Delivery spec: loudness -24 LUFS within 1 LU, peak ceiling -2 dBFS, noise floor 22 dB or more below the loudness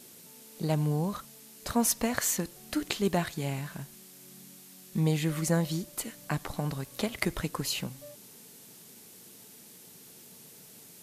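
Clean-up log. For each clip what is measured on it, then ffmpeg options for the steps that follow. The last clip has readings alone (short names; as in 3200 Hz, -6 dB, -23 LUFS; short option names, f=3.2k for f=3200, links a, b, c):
noise floor -52 dBFS; noise floor target -53 dBFS; loudness -31.0 LUFS; peak -8.0 dBFS; loudness target -24.0 LUFS
-> -af "afftdn=nr=6:nf=-52"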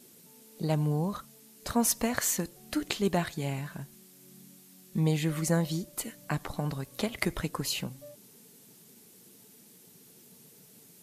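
noise floor -56 dBFS; loudness -31.0 LUFS; peak -8.0 dBFS; loudness target -24.0 LUFS
-> -af "volume=7dB,alimiter=limit=-2dB:level=0:latency=1"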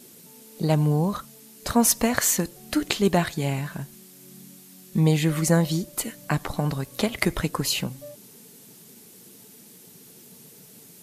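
loudness -24.0 LUFS; peak -2.0 dBFS; noise floor -49 dBFS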